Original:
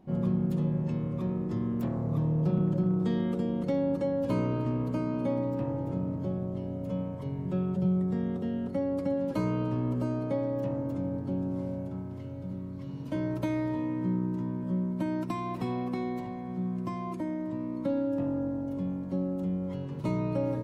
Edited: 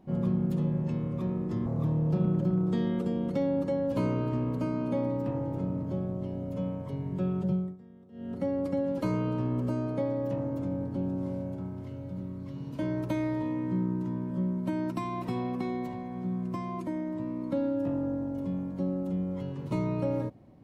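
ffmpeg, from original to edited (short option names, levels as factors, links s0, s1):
-filter_complex "[0:a]asplit=4[s0][s1][s2][s3];[s0]atrim=end=1.662[s4];[s1]atrim=start=1.988:end=8.1,asetpts=PTS-STARTPTS,afade=t=out:st=5.822:d=0.29:silence=0.0841395[s5];[s2]atrim=start=8.1:end=8.45,asetpts=PTS-STARTPTS,volume=0.0841[s6];[s3]atrim=start=8.45,asetpts=PTS-STARTPTS,afade=t=in:d=0.29:silence=0.0841395[s7];[s5][s6][s7]concat=n=3:v=0:a=1[s8];[s4][s8]acrossfade=d=0.004:c1=hsin:c2=hsin"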